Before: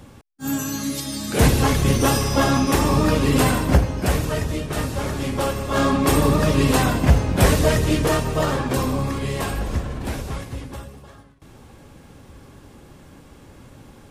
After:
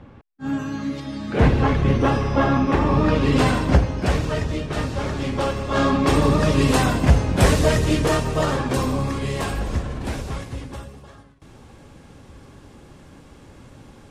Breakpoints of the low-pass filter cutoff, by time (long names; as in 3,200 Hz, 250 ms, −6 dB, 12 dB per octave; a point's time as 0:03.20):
0:02.85 2,300 Hz
0:03.47 5,600 Hz
0:06.13 5,600 Hz
0:06.64 9,300 Hz